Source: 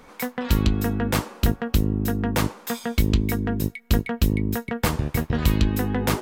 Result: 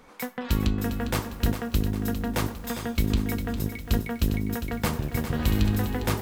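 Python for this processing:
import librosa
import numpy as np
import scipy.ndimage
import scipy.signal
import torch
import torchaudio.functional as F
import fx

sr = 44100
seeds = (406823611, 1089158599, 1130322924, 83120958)

y = fx.room_flutter(x, sr, wall_m=11.7, rt60_s=0.61, at=(5.32, 5.86))
y = fx.rev_schroeder(y, sr, rt60_s=0.35, comb_ms=27, drr_db=16.5)
y = fx.echo_crushed(y, sr, ms=404, feedback_pct=55, bits=7, wet_db=-9.0)
y = y * 10.0 ** (-4.5 / 20.0)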